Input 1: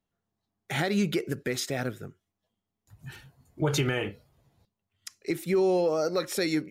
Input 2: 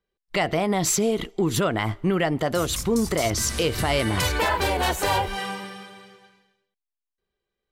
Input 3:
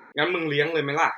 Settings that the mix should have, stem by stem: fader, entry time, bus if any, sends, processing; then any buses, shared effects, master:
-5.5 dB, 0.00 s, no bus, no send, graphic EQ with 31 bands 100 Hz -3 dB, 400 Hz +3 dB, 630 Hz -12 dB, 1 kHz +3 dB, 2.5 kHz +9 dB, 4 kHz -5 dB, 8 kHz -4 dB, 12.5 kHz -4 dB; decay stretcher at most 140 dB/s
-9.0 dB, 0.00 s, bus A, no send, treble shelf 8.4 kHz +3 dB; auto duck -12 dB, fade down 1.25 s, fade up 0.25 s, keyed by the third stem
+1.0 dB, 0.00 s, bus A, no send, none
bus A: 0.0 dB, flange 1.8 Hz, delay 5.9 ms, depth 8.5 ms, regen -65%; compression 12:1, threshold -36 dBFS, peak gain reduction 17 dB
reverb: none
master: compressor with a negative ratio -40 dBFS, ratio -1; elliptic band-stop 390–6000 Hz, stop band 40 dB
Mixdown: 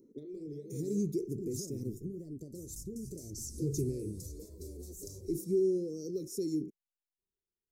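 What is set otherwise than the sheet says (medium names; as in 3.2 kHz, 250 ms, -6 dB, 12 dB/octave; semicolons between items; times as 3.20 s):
stem 2: missing treble shelf 8.4 kHz +3 dB; master: missing compressor with a negative ratio -40 dBFS, ratio -1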